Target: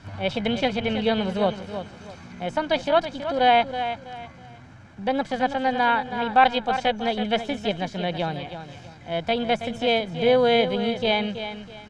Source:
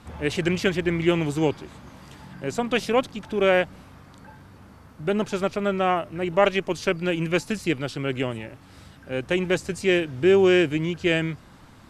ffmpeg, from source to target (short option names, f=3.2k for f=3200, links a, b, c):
-filter_complex "[0:a]lowpass=f=5.5k:w=0.5412,lowpass=f=5.5k:w=1.3066,acrossover=split=3000[a][b];[b]acompressor=threshold=-51dB:ratio=4:attack=1:release=60[c];[a][c]amix=inputs=2:normalize=0,asetrate=57191,aresample=44100,atempo=0.771105,aecho=1:1:1.3:0.51,aecho=1:1:325|650|975:0.316|0.0917|0.0266"